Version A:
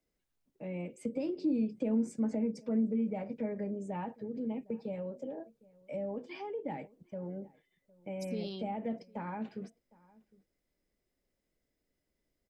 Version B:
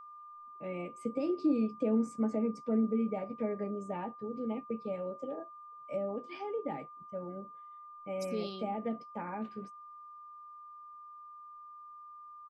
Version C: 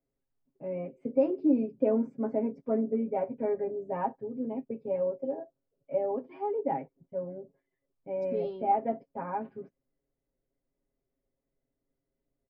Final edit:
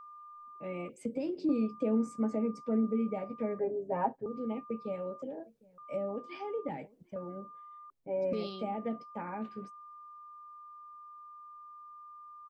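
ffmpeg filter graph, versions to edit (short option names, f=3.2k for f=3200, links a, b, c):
-filter_complex "[0:a]asplit=3[a][b][c];[2:a]asplit=2[d][e];[1:a]asplit=6[f][g][h][i][j][k];[f]atrim=end=0.892[l];[a]atrim=start=0.888:end=1.492[m];[g]atrim=start=1.488:end=3.592[n];[d]atrim=start=3.588:end=4.262[o];[h]atrim=start=4.258:end=5.222[p];[b]atrim=start=5.218:end=5.782[q];[i]atrim=start=5.778:end=6.692[r];[c]atrim=start=6.688:end=7.162[s];[j]atrim=start=7.158:end=7.902[t];[e]atrim=start=7.898:end=8.332[u];[k]atrim=start=8.328[v];[l][m]acrossfade=d=0.004:c1=hsin:c2=hsin[w];[w][n]acrossfade=d=0.004:c1=hsin:c2=hsin[x];[x][o]acrossfade=d=0.004:c1=hsin:c2=hsin[y];[y][p]acrossfade=d=0.004:c1=hsin:c2=hsin[z];[z][q]acrossfade=d=0.004:c1=hsin:c2=hsin[aa];[aa][r]acrossfade=d=0.004:c1=hsin:c2=hsin[ab];[ab][s]acrossfade=d=0.004:c1=hsin:c2=hsin[ac];[ac][t]acrossfade=d=0.004:c1=hsin:c2=hsin[ad];[ad][u]acrossfade=d=0.004:c1=hsin:c2=hsin[ae];[ae][v]acrossfade=d=0.004:c1=hsin:c2=hsin"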